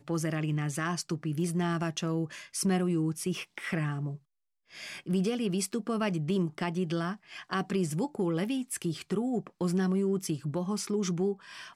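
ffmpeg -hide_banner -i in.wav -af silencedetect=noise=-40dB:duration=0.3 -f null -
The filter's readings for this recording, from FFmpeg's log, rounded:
silence_start: 4.16
silence_end: 4.75 | silence_duration: 0.59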